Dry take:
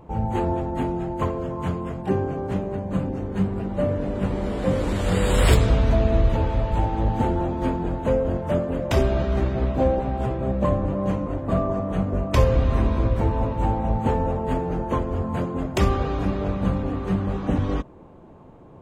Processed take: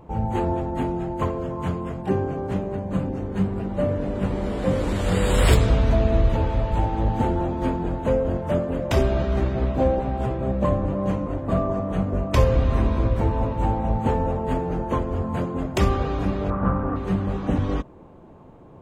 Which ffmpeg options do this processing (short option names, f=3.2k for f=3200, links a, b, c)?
-filter_complex "[0:a]asettb=1/sr,asplit=3[a][b][c];[a]atrim=end=16.504[d];[b]atrim=start=16.5:end=16.96,asetpts=PTS-STARTPTS,afade=t=in:d=0.004:c=qsin,afade=t=out:st=0.456:d=0.004:c=qsin,lowpass=f=1.3k:t=q:w=3.2[e];[c]atrim=start=16.956[f];[d][e]acrossfade=d=0.004:c1=hsin:c2=qsin[g];[g][f]acrossfade=d=0.004:c1=qsin:c2=hsin"